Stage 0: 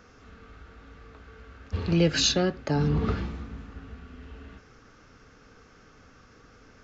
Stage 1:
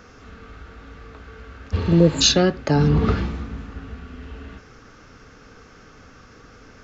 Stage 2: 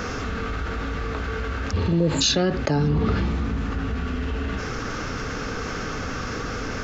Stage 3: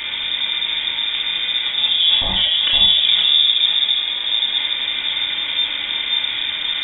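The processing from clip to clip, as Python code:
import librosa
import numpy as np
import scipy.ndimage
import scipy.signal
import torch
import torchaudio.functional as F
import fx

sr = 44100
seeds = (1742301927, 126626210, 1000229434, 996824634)

y1 = fx.spec_repair(x, sr, seeds[0], start_s=1.88, length_s=0.31, low_hz=730.0, high_hz=6700.0, source='before')
y1 = y1 * librosa.db_to_amplitude(7.5)
y2 = fx.env_flatten(y1, sr, amount_pct=70)
y2 = y2 * librosa.db_to_amplitude(-7.5)
y3 = y2 + 10.0 ** (-5.0 / 20.0) * np.pad(y2, (int(515 * sr / 1000.0), 0))[:len(y2)]
y3 = fx.room_shoebox(y3, sr, seeds[1], volume_m3=990.0, walls='furnished', distance_m=2.6)
y3 = fx.freq_invert(y3, sr, carrier_hz=3600)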